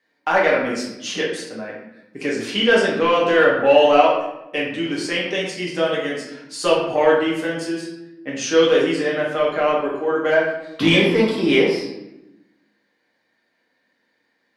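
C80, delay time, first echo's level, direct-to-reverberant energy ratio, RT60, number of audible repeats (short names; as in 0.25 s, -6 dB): 6.0 dB, none, none, -5.0 dB, 0.95 s, none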